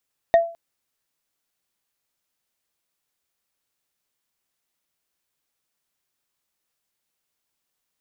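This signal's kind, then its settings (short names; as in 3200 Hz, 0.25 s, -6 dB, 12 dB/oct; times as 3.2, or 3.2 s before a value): wood hit bar, length 0.21 s, lowest mode 673 Hz, decay 0.37 s, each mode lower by 12 dB, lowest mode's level -8 dB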